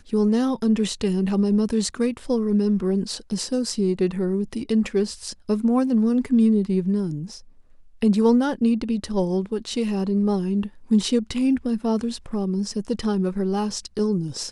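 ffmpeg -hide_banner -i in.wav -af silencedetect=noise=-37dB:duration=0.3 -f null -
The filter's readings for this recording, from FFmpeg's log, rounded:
silence_start: 7.40
silence_end: 8.02 | silence_duration: 0.62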